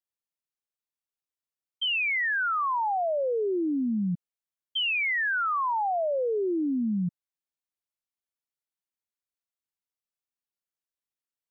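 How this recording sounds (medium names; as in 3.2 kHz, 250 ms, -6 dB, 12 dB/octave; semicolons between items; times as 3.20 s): noise floor -94 dBFS; spectral tilt -2.0 dB/octave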